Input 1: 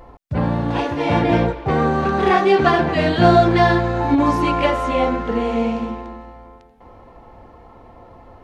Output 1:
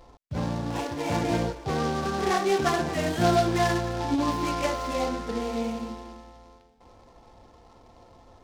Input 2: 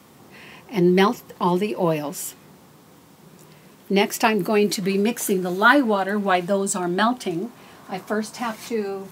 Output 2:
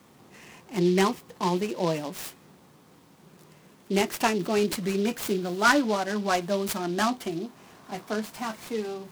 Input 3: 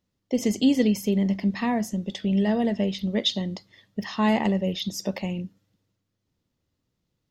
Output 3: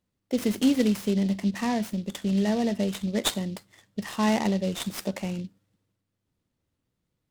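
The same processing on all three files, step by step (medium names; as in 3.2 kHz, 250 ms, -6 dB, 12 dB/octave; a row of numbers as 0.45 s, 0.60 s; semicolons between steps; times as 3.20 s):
delay time shaken by noise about 3.6 kHz, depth 0.04 ms; normalise loudness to -27 LUFS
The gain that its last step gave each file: -9.5 dB, -5.5 dB, -2.0 dB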